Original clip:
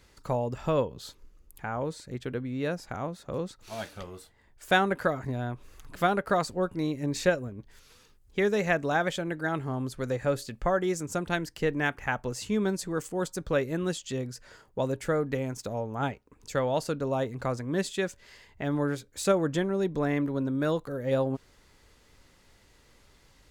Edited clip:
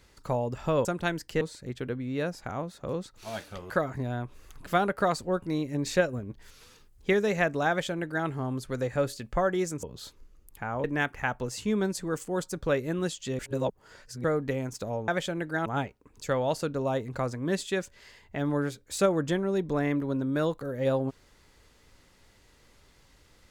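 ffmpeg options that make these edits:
-filter_complex "[0:a]asplit=12[a][b][c][d][e][f][g][h][i][j][k][l];[a]atrim=end=0.852[m];[b]atrim=start=11.118:end=11.682[n];[c]atrim=start=1.858:end=4.152[o];[d]atrim=start=4.988:end=7.422[p];[e]atrim=start=7.418:end=8.422,asetpts=PTS-STARTPTS,volume=3dB[q];[f]atrim=start=8.418:end=11.122[r];[g]atrim=start=0.848:end=1.862[s];[h]atrim=start=11.678:end=14.232[t];[i]atrim=start=14.228:end=15.082,asetpts=PTS-STARTPTS,areverse[u];[j]atrim=start=15.078:end=15.922[v];[k]atrim=start=8.978:end=9.562[w];[l]atrim=start=15.918[x];[m][n]acrossfade=d=0.004:c1=hsin:c2=hsin[y];[y][o]acrossfade=d=0.004:c1=hsin:c2=hsin[z];[z][p]acrossfade=d=0.004:c1=hsin:c2=hsin[aa];[aa][q]acrossfade=d=0.004:c1=hsin:c2=hsin[ab];[ab][r]acrossfade=d=0.004:c1=hsin:c2=hsin[ac];[ac][s]acrossfade=d=0.004:c1=hsin:c2=hsin[ad];[ad][t]acrossfade=d=0.004:c1=hsin:c2=hsin[ae];[ae][u]acrossfade=d=0.004:c1=hsin:c2=hsin[af];[af][v]acrossfade=d=0.004:c1=hsin:c2=hsin[ag];[ag][w]acrossfade=d=0.004:c1=hsin:c2=hsin[ah];[ah][x]acrossfade=d=0.004:c1=hsin:c2=hsin"

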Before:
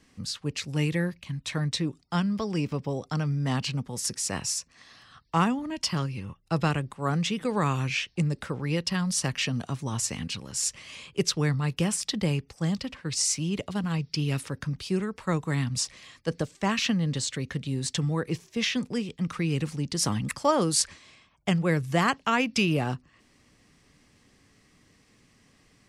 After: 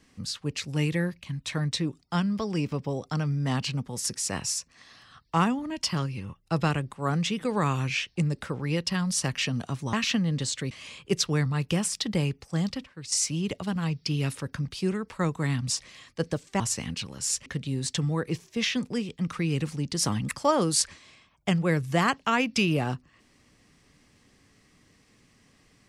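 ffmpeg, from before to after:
-filter_complex "[0:a]asplit=7[a][b][c][d][e][f][g];[a]atrim=end=9.932[h];[b]atrim=start=16.678:end=17.462[i];[c]atrim=start=10.788:end=12.922[j];[d]atrim=start=12.918:end=13.202,asetpts=PTS-STARTPTS,volume=-9dB[k];[e]atrim=start=13.198:end=16.682[l];[f]atrim=start=9.928:end=10.792[m];[g]atrim=start=17.458[n];[h][i]acrossfade=d=0.004:c1=hsin:c2=hsin[o];[o][j]acrossfade=d=0.004:c1=hsin:c2=hsin[p];[p][k]acrossfade=d=0.004:c1=hsin:c2=hsin[q];[q][l]acrossfade=d=0.004:c1=hsin:c2=hsin[r];[r][m]acrossfade=d=0.004:c1=hsin:c2=hsin[s];[s][n]acrossfade=d=0.004:c1=hsin:c2=hsin"

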